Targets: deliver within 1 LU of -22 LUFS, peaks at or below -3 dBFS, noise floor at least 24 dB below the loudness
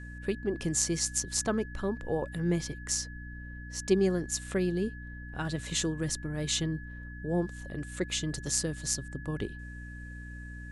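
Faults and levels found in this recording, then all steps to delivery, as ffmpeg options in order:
hum 60 Hz; highest harmonic 300 Hz; hum level -41 dBFS; steady tone 1.7 kHz; tone level -47 dBFS; loudness -32.0 LUFS; peak level -9.0 dBFS; loudness target -22.0 LUFS
-> -af "bandreject=f=60:t=h:w=6,bandreject=f=120:t=h:w=6,bandreject=f=180:t=h:w=6,bandreject=f=240:t=h:w=6,bandreject=f=300:t=h:w=6"
-af "bandreject=f=1700:w=30"
-af "volume=3.16,alimiter=limit=0.708:level=0:latency=1"

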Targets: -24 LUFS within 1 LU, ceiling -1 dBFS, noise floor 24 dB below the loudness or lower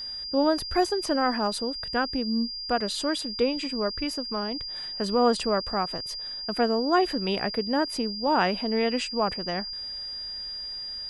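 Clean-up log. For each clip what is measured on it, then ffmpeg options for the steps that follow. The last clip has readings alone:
steady tone 4.8 kHz; tone level -33 dBFS; loudness -27.0 LUFS; peak level -10.5 dBFS; loudness target -24.0 LUFS
-> -af "bandreject=f=4800:w=30"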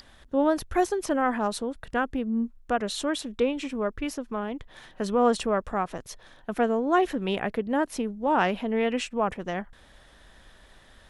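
steady tone not found; loudness -27.5 LUFS; peak level -11.0 dBFS; loudness target -24.0 LUFS
-> -af "volume=1.5"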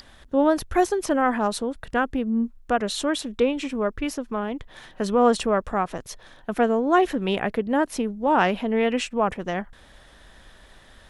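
loudness -24.0 LUFS; peak level -7.5 dBFS; noise floor -51 dBFS

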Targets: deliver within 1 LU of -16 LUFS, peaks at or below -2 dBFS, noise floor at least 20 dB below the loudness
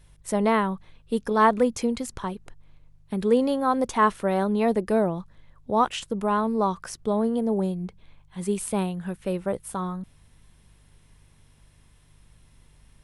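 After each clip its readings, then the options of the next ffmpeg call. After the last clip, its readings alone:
hum 50 Hz; highest harmonic 150 Hz; hum level -57 dBFS; loudness -25.5 LUFS; peak level -7.5 dBFS; loudness target -16.0 LUFS
-> -af "bandreject=f=50:t=h:w=4,bandreject=f=100:t=h:w=4,bandreject=f=150:t=h:w=4"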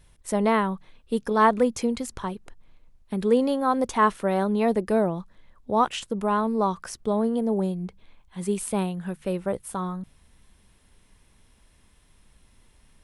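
hum not found; loudness -25.5 LUFS; peak level -7.5 dBFS; loudness target -16.0 LUFS
-> -af "volume=2.99,alimiter=limit=0.794:level=0:latency=1"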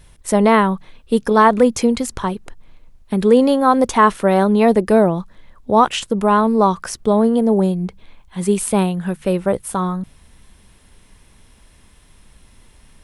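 loudness -16.5 LUFS; peak level -2.0 dBFS; noise floor -50 dBFS

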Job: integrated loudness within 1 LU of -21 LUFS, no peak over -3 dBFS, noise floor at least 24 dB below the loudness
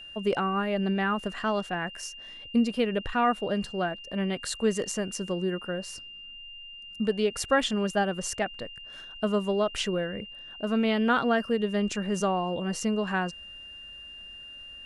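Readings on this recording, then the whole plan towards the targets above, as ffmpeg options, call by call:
steady tone 2.8 kHz; tone level -42 dBFS; loudness -28.5 LUFS; peak level -12.5 dBFS; loudness target -21.0 LUFS
-> -af "bandreject=f=2800:w=30"
-af "volume=2.37"

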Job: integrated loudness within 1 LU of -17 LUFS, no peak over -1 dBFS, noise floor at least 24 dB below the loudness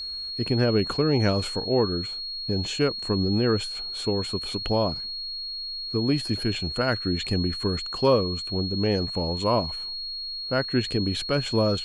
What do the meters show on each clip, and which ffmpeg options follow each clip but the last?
steady tone 4.3 kHz; tone level -31 dBFS; loudness -25.5 LUFS; peak level -9.0 dBFS; loudness target -17.0 LUFS
-> -af "bandreject=f=4300:w=30"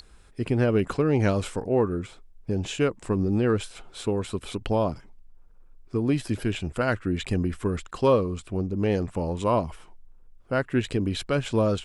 steady tone not found; loudness -26.5 LUFS; peak level -9.0 dBFS; loudness target -17.0 LUFS
-> -af "volume=2.99,alimiter=limit=0.891:level=0:latency=1"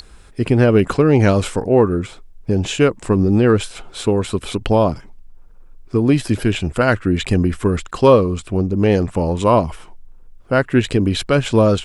loudness -17.0 LUFS; peak level -1.0 dBFS; noise floor -43 dBFS

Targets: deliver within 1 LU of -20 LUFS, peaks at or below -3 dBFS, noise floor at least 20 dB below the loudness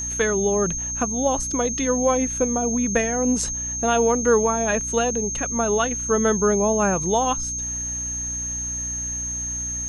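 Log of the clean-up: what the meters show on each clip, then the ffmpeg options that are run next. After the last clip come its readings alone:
hum 60 Hz; highest harmonic 300 Hz; hum level -33 dBFS; steady tone 6.4 kHz; tone level -26 dBFS; loudness -21.5 LUFS; peak level -6.0 dBFS; loudness target -20.0 LUFS
-> -af "bandreject=f=60:t=h:w=4,bandreject=f=120:t=h:w=4,bandreject=f=180:t=h:w=4,bandreject=f=240:t=h:w=4,bandreject=f=300:t=h:w=4"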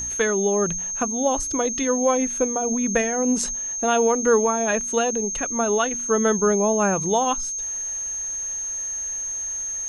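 hum not found; steady tone 6.4 kHz; tone level -26 dBFS
-> -af "bandreject=f=6400:w=30"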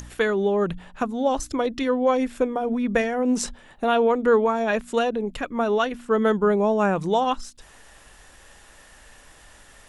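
steady tone not found; loudness -23.0 LUFS; peak level -7.5 dBFS; loudness target -20.0 LUFS
-> -af "volume=1.41"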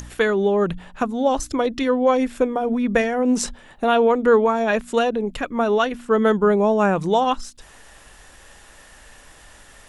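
loudness -20.0 LUFS; peak level -4.5 dBFS; noise floor -48 dBFS

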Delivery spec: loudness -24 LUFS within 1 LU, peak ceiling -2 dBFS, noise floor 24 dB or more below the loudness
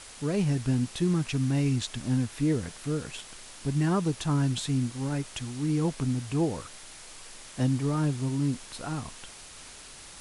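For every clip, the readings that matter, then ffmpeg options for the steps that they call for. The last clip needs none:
noise floor -47 dBFS; noise floor target -53 dBFS; loudness -29.0 LUFS; peak level -15.5 dBFS; loudness target -24.0 LUFS
-> -af "afftdn=nr=6:nf=-47"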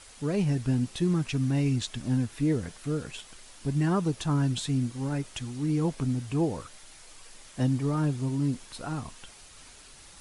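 noise floor -51 dBFS; noise floor target -53 dBFS
-> -af "afftdn=nr=6:nf=-51"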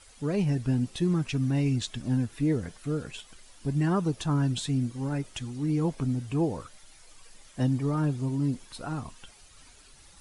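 noise floor -54 dBFS; loudness -29.0 LUFS; peak level -16.0 dBFS; loudness target -24.0 LUFS
-> -af "volume=1.78"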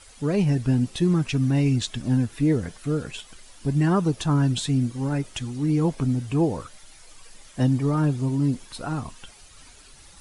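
loudness -24.0 LUFS; peak level -11.0 dBFS; noise floor -49 dBFS

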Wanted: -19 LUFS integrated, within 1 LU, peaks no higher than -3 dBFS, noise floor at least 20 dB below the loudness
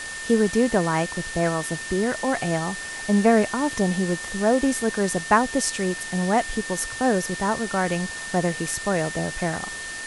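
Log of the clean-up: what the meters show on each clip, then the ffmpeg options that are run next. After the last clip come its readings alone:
steady tone 1.8 kHz; tone level -33 dBFS; noise floor -34 dBFS; noise floor target -44 dBFS; loudness -23.5 LUFS; peak level -5.0 dBFS; loudness target -19.0 LUFS
-> -af "bandreject=f=1800:w=30"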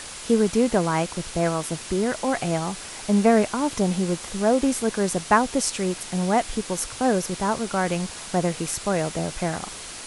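steady tone not found; noise floor -38 dBFS; noise floor target -44 dBFS
-> -af "afftdn=nr=6:nf=-38"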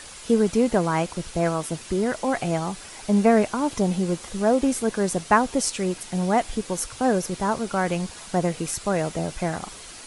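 noise floor -42 dBFS; noise floor target -44 dBFS
-> -af "afftdn=nr=6:nf=-42"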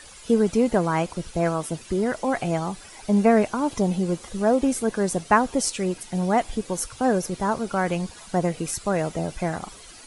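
noise floor -45 dBFS; loudness -24.0 LUFS; peak level -5.5 dBFS; loudness target -19.0 LUFS
-> -af "volume=1.78,alimiter=limit=0.708:level=0:latency=1"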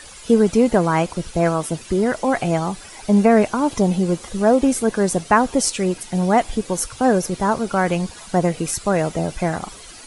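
loudness -19.5 LUFS; peak level -3.0 dBFS; noise floor -40 dBFS

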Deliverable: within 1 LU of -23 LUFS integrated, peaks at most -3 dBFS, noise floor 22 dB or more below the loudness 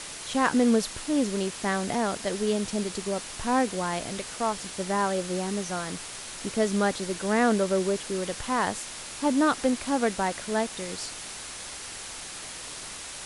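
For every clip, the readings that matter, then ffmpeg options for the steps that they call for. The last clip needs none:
noise floor -40 dBFS; noise floor target -50 dBFS; loudness -28.0 LUFS; peak level -9.5 dBFS; loudness target -23.0 LUFS
-> -af "afftdn=nr=10:nf=-40"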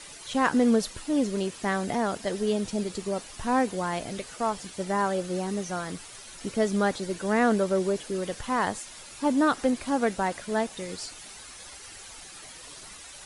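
noise floor -45 dBFS; noise floor target -50 dBFS
-> -af "afftdn=nr=6:nf=-45"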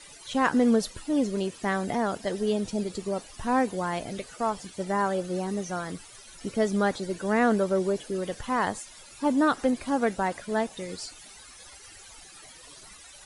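noise floor -49 dBFS; noise floor target -50 dBFS
-> -af "afftdn=nr=6:nf=-49"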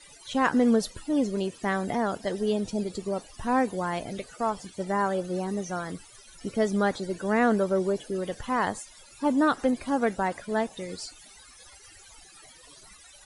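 noise floor -52 dBFS; loudness -28.0 LUFS; peak level -10.5 dBFS; loudness target -23.0 LUFS
-> -af "volume=1.78"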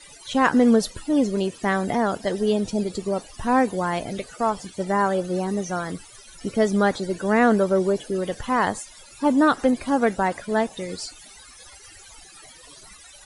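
loudness -23.0 LUFS; peak level -5.5 dBFS; noise floor -47 dBFS

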